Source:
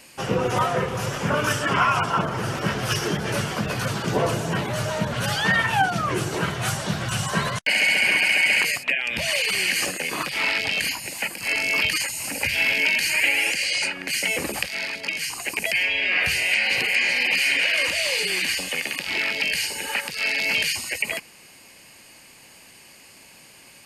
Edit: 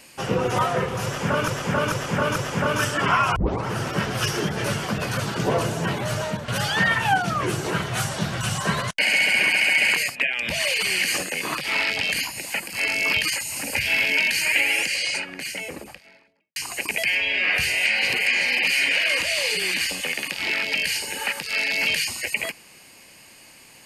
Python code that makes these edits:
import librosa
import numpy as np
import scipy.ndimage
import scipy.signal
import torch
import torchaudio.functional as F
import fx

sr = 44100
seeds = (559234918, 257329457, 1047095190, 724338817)

y = fx.studio_fade_out(x, sr, start_s=13.53, length_s=1.71)
y = fx.edit(y, sr, fx.repeat(start_s=1.04, length_s=0.44, count=4),
    fx.tape_start(start_s=2.04, length_s=0.29),
    fx.fade_out_to(start_s=4.89, length_s=0.27, floor_db=-9.0), tone=tone)